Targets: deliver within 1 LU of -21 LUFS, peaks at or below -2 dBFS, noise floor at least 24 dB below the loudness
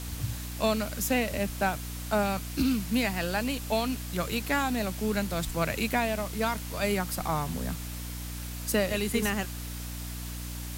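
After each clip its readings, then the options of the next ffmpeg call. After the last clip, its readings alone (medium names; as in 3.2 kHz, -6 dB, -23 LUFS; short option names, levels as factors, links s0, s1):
hum 60 Hz; highest harmonic 300 Hz; hum level -36 dBFS; noise floor -37 dBFS; noise floor target -54 dBFS; loudness -30.0 LUFS; peak level -13.5 dBFS; loudness target -21.0 LUFS
-> -af "bandreject=f=60:t=h:w=4,bandreject=f=120:t=h:w=4,bandreject=f=180:t=h:w=4,bandreject=f=240:t=h:w=4,bandreject=f=300:t=h:w=4"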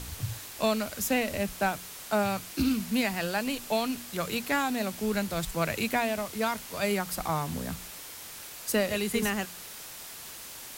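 hum not found; noise floor -44 dBFS; noise floor target -54 dBFS
-> -af "afftdn=nr=10:nf=-44"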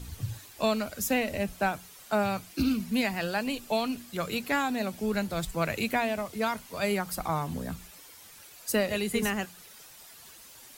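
noise floor -51 dBFS; noise floor target -55 dBFS
-> -af "afftdn=nr=6:nf=-51"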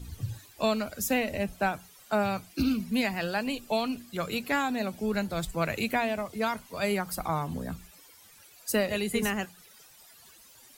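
noise floor -55 dBFS; loudness -30.5 LUFS; peak level -14.5 dBFS; loudness target -21.0 LUFS
-> -af "volume=2.99"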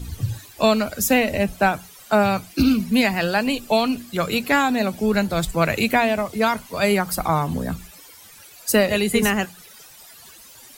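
loudness -21.0 LUFS; peak level -5.0 dBFS; noise floor -46 dBFS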